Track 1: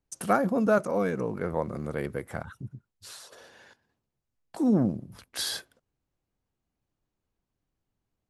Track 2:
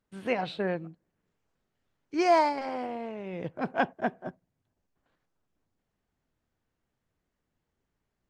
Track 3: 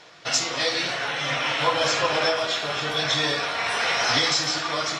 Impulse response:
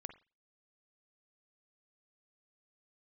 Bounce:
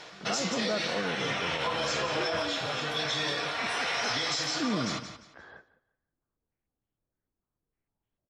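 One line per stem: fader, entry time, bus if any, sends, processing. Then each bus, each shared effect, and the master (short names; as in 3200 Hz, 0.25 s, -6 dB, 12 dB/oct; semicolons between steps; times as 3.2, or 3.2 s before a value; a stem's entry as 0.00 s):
-6.0 dB, 0.00 s, no send, echo send -19 dB, LPF 1700 Hz 24 dB/oct
-12.0 dB, 0.00 s, no send, no echo send, rotary speaker horn 0.6 Hz; stepped low-pass 6.6 Hz 310–3200 Hz
+3.0 dB, 0.00 s, no send, echo send -20.5 dB, auto duck -9 dB, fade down 0.45 s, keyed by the first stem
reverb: off
echo: feedback echo 0.175 s, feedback 26%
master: limiter -20.5 dBFS, peak gain reduction 8.5 dB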